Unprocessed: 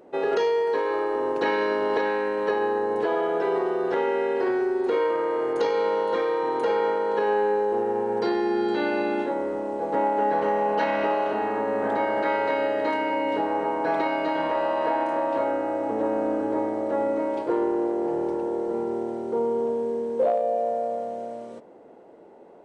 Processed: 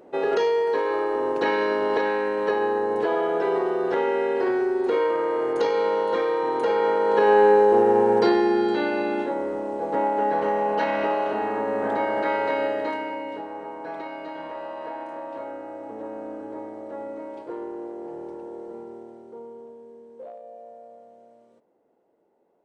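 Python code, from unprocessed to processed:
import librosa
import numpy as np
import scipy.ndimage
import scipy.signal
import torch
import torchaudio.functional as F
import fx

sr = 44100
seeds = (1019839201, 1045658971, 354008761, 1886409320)

y = fx.gain(x, sr, db=fx.line((6.74, 1.0), (7.45, 7.5), (8.07, 7.5), (8.91, 0.0), (12.66, 0.0), (13.47, -10.0), (18.65, -10.0), (19.78, -18.5)))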